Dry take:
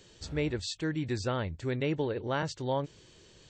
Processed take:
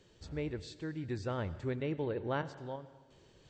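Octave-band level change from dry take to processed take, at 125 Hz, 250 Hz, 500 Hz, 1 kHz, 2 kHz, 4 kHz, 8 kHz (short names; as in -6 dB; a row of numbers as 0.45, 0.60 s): -5.0 dB, -5.5 dB, -5.0 dB, -6.0 dB, -7.0 dB, -11.5 dB, under -10 dB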